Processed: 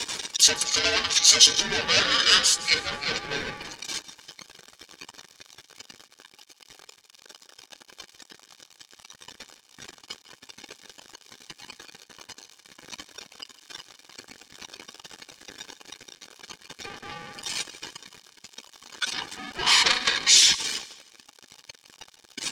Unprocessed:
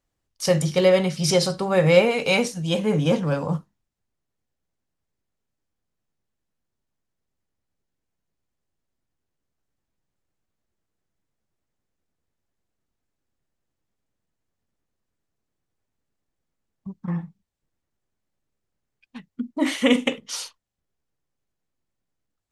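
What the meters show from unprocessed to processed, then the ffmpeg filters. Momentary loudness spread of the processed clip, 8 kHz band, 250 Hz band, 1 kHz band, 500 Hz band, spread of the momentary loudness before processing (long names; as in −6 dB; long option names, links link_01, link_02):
21 LU, +13.0 dB, −17.0 dB, +0.5 dB, −14.5 dB, 15 LU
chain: -af "aeval=exprs='val(0)+0.5*0.119*sgn(val(0))':channel_layout=same,afftdn=noise_reduction=20:noise_floor=-31,aecho=1:1:1.5:0.46,areverse,acompressor=mode=upward:threshold=-24dB:ratio=2.5,areverse,aeval=exprs='0.891*sin(PI/2*3.16*val(0)/0.891)':channel_layout=same,bandpass=frequency=4400:width_type=q:width=1.9:csg=0,aeval=exprs='val(0)*sin(2*PI*1000*n/s)':channel_layout=same,aecho=1:1:157|314|471:0.133|0.056|0.0235"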